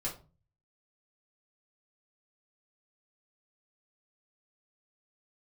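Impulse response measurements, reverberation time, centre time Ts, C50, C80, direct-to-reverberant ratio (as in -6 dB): 0.35 s, 20 ms, 10.5 dB, 16.0 dB, -5.5 dB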